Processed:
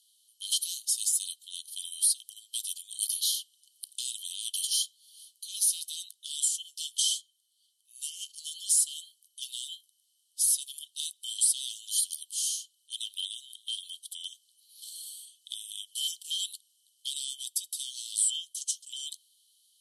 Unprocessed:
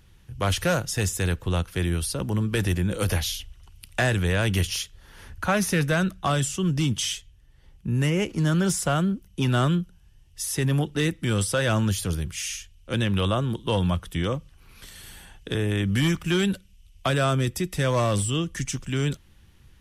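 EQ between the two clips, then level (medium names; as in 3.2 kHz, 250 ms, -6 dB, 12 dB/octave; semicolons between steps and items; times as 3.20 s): rippled Chebyshev high-pass 3 kHz, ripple 9 dB; low-pass 11 kHz 12 dB/octave; treble shelf 5 kHz +9 dB; +2.5 dB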